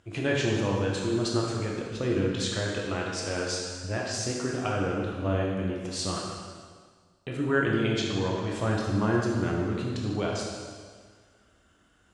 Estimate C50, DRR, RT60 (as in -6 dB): 0.5 dB, -2.5 dB, 1.7 s